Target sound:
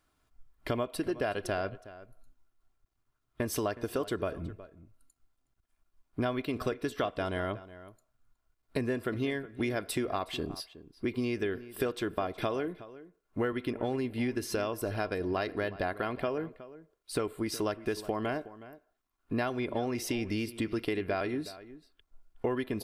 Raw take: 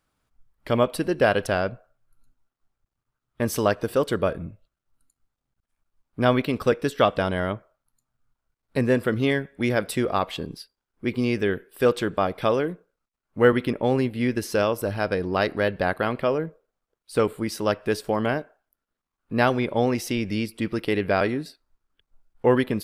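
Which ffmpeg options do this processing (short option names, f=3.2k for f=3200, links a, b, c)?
-filter_complex "[0:a]aecho=1:1:2.9:0.4,acompressor=threshold=-29dB:ratio=6,asplit=2[a][b];[b]adelay=367.3,volume=-16dB,highshelf=f=4k:g=-8.27[c];[a][c]amix=inputs=2:normalize=0"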